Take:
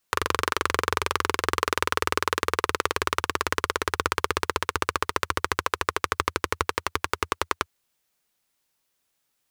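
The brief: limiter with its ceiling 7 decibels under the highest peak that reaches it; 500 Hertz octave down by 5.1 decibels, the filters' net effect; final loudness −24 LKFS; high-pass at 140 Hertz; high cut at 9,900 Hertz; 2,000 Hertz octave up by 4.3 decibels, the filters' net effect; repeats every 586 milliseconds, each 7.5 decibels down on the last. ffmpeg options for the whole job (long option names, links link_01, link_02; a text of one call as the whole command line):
ffmpeg -i in.wav -af "highpass=140,lowpass=9900,equalizer=frequency=500:width_type=o:gain=-6.5,equalizer=frequency=2000:width_type=o:gain=6,alimiter=limit=-7.5dB:level=0:latency=1,aecho=1:1:586|1172|1758|2344|2930:0.422|0.177|0.0744|0.0312|0.0131,volume=5.5dB" out.wav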